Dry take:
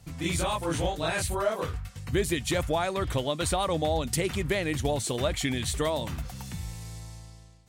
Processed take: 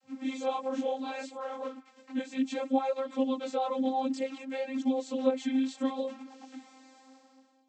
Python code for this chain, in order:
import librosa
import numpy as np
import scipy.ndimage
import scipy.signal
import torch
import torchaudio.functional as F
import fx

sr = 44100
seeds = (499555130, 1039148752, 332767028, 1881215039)

y = fx.dynamic_eq(x, sr, hz=1600.0, q=1.5, threshold_db=-46.0, ratio=4.0, max_db=-5)
y = fx.vocoder(y, sr, bands=32, carrier='saw', carrier_hz=264.0)
y = fx.chorus_voices(y, sr, voices=2, hz=0.62, base_ms=20, depth_ms=4.0, mix_pct=60)
y = F.gain(torch.from_numpy(y), 2.0).numpy()